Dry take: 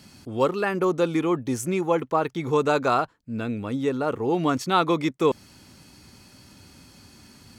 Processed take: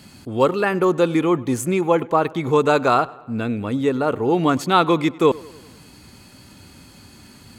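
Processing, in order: bell 5600 Hz -9.5 dB 0.21 oct; darkening echo 98 ms, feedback 58%, low-pass 4700 Hz, level -22 dB; gain +5 dB

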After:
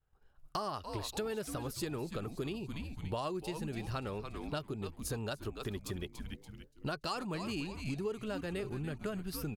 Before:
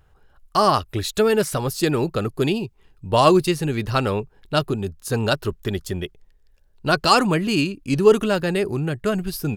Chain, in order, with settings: frequency-shifting echo 0.287 s, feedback 40%, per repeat -150 Hz, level -12 dB; compressor 6:1, threshold -31 dBFS, peak gain reduction 20.5 dB; expander -46 dBFS; gain -5 dB

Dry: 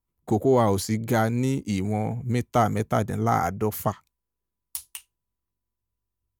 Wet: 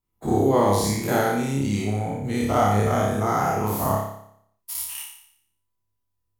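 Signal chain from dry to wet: spectral dilation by 0.12 s; flutter echo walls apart 5 m, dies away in 0.68 s; gain -5.5 dB

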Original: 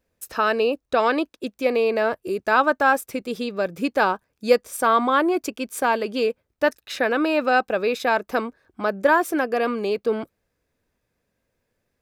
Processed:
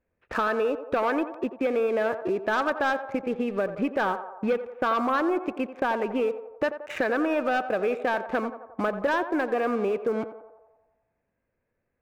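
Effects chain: steep low-pass 2500 Hz 36 dB/oct; sample leveller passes 2; compressor 3:1, threshold -27 dBFS, peak gain reduction 13.5 dB; on a send: narrowing echo 88 ms, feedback 66%, band-pass 750 Hz, level -10 dB

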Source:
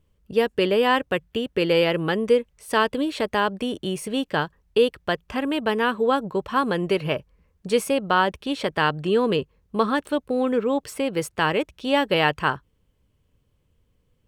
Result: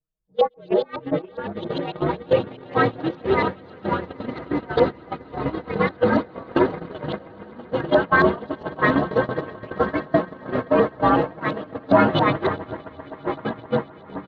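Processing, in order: inharmonic rescaling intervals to 112%; air absorption 100 m; comb 6.4 ms, depth 92%; LFO low-pass saw up 7.3 Hz 600–4000 Hz; on a send: swelling echo 0.13 s, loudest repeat 8, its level -13 dB; on the sum: echoes that change speed 0.19 s, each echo -5 st, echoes 3; gate -15 dBFS, range -21 dB; bell 2300 Hz -7.5 dB 0.24 oct; gain -2 dB

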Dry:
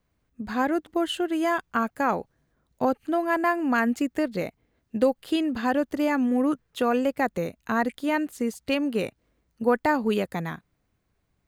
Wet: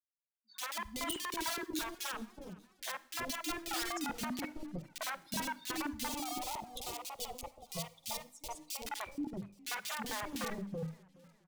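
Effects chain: per-bin expansion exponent 3; LPF 7300 Hz 12 dB/oct; notches 50/100/150/200/250/300 Hz; dynamic EQ 750 Hz, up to -6 dB, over -42 dBFS, Q 1.6; limiter -28.5 dBFS, peak gain reduction 11.5 dB; wrapped overs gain 32.5 dB; 6.03–8.8 fixed phaser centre 660 Hz, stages 4; three bands offset in time highs, mids, lows 50/380 ms, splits 570/2500 Hz; Schroeder reverb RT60 0.6 s, DRR 19 dB; warbling echo 0.414 s, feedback 42%, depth 115 cents, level -22 dB; gain +1.5 dB

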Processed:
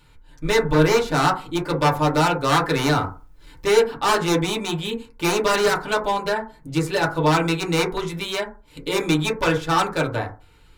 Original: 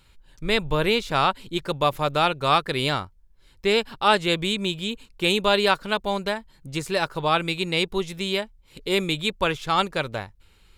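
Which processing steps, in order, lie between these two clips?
2.55–3.8 G.711 law mismatch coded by mu; wavefolder -16.5 dBFS; FDN reverb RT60 0.34 s, low-frequency decay 1×, high-frequency decay 0.25×, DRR -3 dB

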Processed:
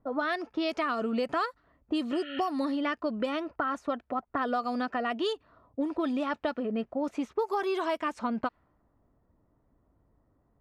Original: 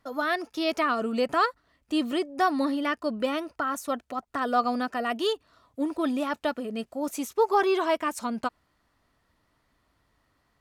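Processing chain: low-pass opened by the level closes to 590 Hz, open at -20 dBFS; spectral repair 2.17–2.45, 1300–4400 Hz before; compressor 6:1, threshold -31 dBFS, peak gain reduction 13 dB; gain +4 dB

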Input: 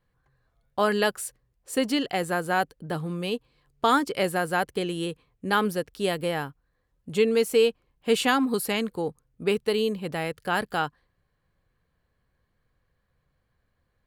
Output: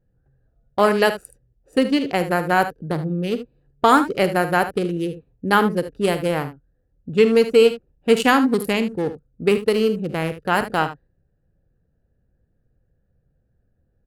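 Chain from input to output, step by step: Wiener smoothing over 41 samples; dynamic EQ 3600 Hz, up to -7 dB, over -50 dBFS, Q 4; on a send: early reflections 50 ms -15 dB, 75 ms -12.5 dB; on the sum: gain +7.5 dB

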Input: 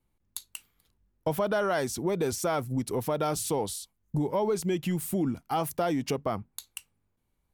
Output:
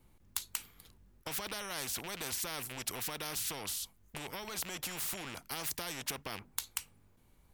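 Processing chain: rattling part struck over -33 dBFS, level -39 dBFS; spectral compressor 4:1; gain +1.5 dB

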